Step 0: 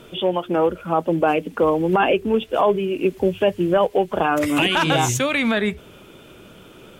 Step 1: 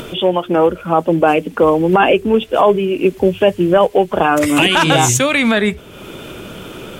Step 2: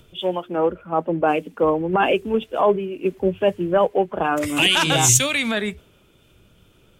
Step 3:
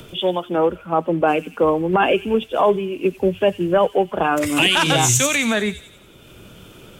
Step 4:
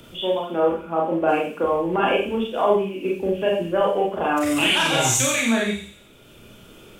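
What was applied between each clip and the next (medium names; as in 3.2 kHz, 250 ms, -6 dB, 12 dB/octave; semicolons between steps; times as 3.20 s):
dynamic bell 8.2 kHz, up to +5 dB, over -43 dBFS, Q 1.3; upward compressor, threshold -28 dBFS; trim +6 dB
three bands expanded up and down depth 100%; trim -7.5 dB
feedback echo behind a high-pass 90 ms, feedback 45%, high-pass 4.6 kHz, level -3.5 dB; three bands compressed up and down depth 40%; trim +2 dB
hum notches 50/100/150/200 Hz; Schroeder reverb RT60 0.39 s, combs from 27 ms, DRR -2.5 dB; trim -7 dB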